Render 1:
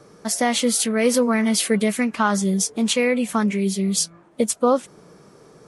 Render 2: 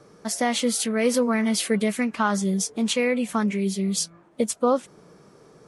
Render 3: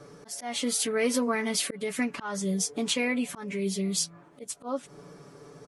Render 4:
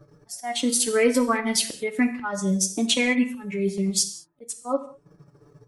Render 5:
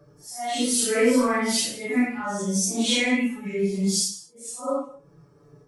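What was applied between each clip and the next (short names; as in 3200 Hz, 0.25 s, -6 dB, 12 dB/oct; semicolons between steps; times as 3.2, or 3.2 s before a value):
high shelf 9000 Hz -4.5 dB; gain -3 dB
comb 7 ms, depth 65%; auto swell 0.318 s; in parallel at +2.5 dB: compressor, threshold -32 dBFS, peak gain reduction 14 dB; on the sum: gain -6.5 dB
per-bin expansion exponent 1.5; transient shaper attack 0 dB, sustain -12 dB; non-linear reverb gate 0.23 s falling, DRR 7 dB; gain +7.5 dB
phase scrambler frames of 0.2 s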